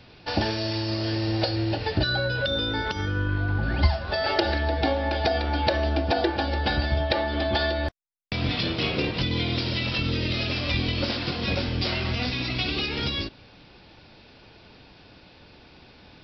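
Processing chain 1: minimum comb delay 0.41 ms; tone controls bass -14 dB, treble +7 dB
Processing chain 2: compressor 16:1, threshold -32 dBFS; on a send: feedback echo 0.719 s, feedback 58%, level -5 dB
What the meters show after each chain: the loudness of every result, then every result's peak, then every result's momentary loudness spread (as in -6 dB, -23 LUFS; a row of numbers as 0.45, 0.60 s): -27.5, -35.0 LUFS; -5.5, -16.5 dBFS; 5, 9 LU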